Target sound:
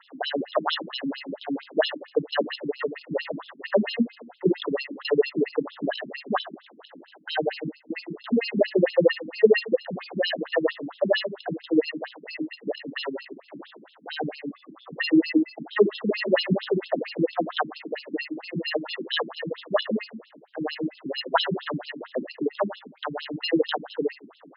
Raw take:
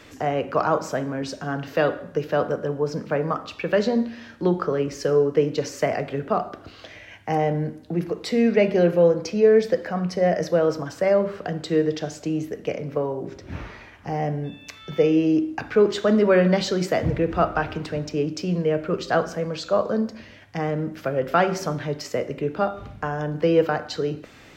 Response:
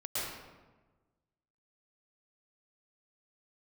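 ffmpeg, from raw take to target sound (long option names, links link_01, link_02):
-af "acrusher=samples=19:mix=1:aa=0.000001,afftfilt=real='re*between(b*sr/1024,230*pow(3800/230,0.5+0.5*sin(2*PI*4.4*pts/sr))/1.41,230*pow(3800/230,0.5+0.5*sin(2*PI*4.4*pts/sr))*1.41)':imag='im*between(b*sr/1024,230*pow(3800/230,0.5+0.5*sin(2*PI*4.4*pts/sr))/1.41,230*pow(3800/230,0.5+0.5*sin(2*PI*4.4*pts/sr))*1.41)':win_size=1024:overlap=0.75,volume=4dB"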